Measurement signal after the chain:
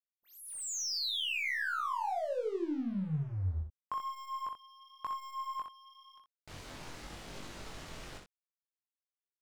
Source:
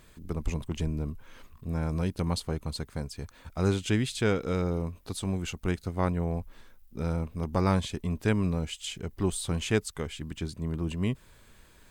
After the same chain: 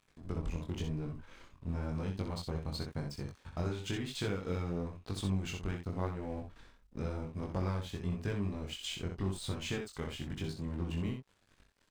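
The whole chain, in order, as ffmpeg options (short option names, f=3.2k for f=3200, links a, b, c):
-af "lowpass=6.6k,acompressor=threshold=-31dB:ratio=10,aeval=exprs='0.0944*(cos(1*acos(clip(val(0)/0.0944,-1,1)))-cos(1*PI/2))+0.000531*(cos(8*acos(clip(val(0)/0.0944,-1,1)))-cos(8*PI/2))':c=same,aeval=exprs='sgn(val(0))*max(abs(val(0))-0.00266,0)':c=same,aecho=1:1:20|63:0.224|0.501,flanger=delay=20:depth=3.6:speed=0.95,volume=2dB"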